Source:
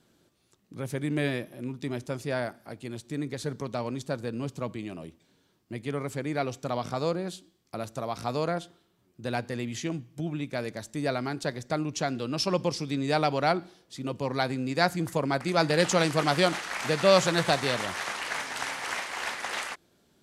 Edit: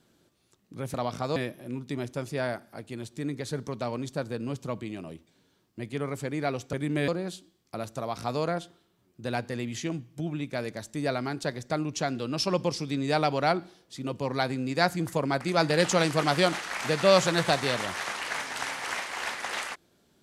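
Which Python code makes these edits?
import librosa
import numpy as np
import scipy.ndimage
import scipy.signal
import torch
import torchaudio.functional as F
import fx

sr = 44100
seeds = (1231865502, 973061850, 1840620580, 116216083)

y = fx.edit(x, sr, fx.swap(start_s=0.94, length_s=0.35, other_s=6.66, other_length_s=0.42), tone=tone)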